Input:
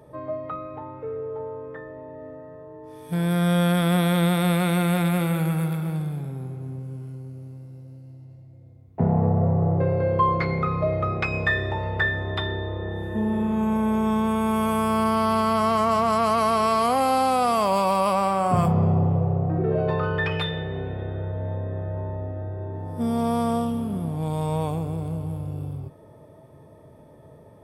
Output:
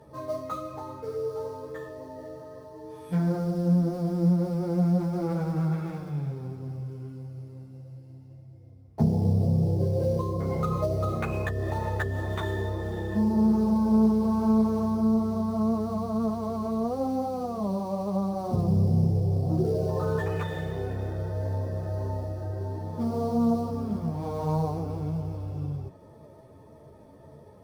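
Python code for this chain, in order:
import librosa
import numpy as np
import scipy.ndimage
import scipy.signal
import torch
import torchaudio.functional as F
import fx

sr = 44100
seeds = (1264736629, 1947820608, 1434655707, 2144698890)

p1 = fx.env_lowpass_down(x, sr, base_hz=410.0, full_db=-18.0)
p2 = fx.sample_hold(p1, sr, seeds[0], rate_hz=5200.0, jitter_pct=20)
p3 = p1 + (p2 * 10.0 ** (-11.0 / 20.0))
y = fx.ensemble(p3, sr)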